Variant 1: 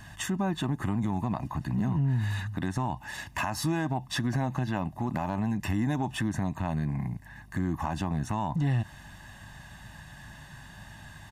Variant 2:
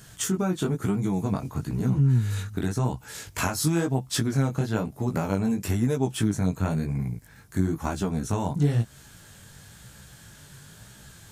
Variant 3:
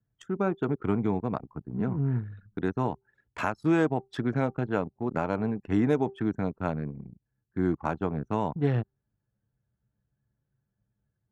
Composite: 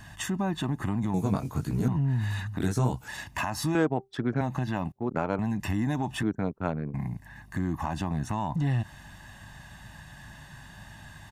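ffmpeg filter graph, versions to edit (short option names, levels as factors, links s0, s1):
-filter_complex "[1:a]asplit=2[s0][s1];[2:a]asplit=3[s2][s3][s4];[0:a]asplit=6[s5][s6][s7][s8][s9][s10];[s5]atrim=end=1.142[s11];[s0]atrim=start=1.138:end=1.882[s12];[s6]atrim=start=1.878:end=2.602[s13];[s1]atrim=start=2.598:end=3.082[s14];[s7]atrim=start=3.078:end=3.752[s15];[s2]atrim=start=3.748:end=4.412[s16];[s8]atrim=start=4.408:end=4.922[s17];[s3]atrim=start=4.918:end=5.392[s18];[s9]atrim=start=5.388:end=6.232[s19];[s4]atrim=start=6.228:end=6.942[s20];[s10]atrim=start=6.938[s21];[s11][s12]acrossfade=d=0.004:c1=hsin:c2=hsin[s22];[s22][s13]acrossfade=d=0.004:c1=hsin:c2=hsin[s23];[s23][s14]acrossfade=d=0.004:c1=hsin:c2=hsin[s24];[s24][s15]acrossfade=d=0.004:c1=hsin:c2=hsin[s25];[s25][s16]acrossfade=d=0.004:c1=hsin:c2=hsin[s26];[s26][s17]acrossfade=d=0.004:c1=hsin:c2=hsin[s27];[s27][s18]acrossfade=d=0.004:c1=hsin:c2=hsin[s28];[s28][s19]acrossfade=d=0.004:c1=hsin:c2=hsin[s29];[s29][s20]acrossfade=d=0.004:c1=hsin:c2=hsin[s30];[s30][s21]acrossfade=d=0.004:c1=hsin:c2=hsin"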